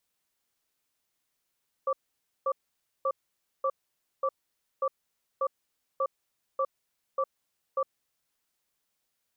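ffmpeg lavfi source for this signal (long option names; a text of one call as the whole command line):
ffmpeg -f lavfi -i "aevalsrc='0.0447*(sin(2*PI*536*t)+sin(2*PI*1160*t))*clip(min(mod(t,0.59),0.06-mod(t,0.59))/0.005,0,1)':duration=6.09:sample_rate=44100" out.wav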